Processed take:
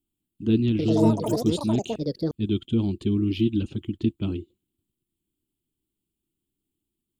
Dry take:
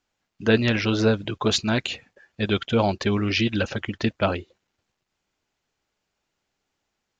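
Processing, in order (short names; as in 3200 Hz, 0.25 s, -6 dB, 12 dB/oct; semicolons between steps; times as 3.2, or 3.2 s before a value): EQ curve 210 Hz 0 dB, 340 Hz +4 dB, 540 Hz -25 dB, 1200 Hz -21 dB, 1700 Hz -30 dB, 3200 Hz -8 dB, 6000 Hz -24 dB, 8700 Hz +8 dB; 0.7–2.85 echoes that change speed 91 ms, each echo +6 st, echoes 3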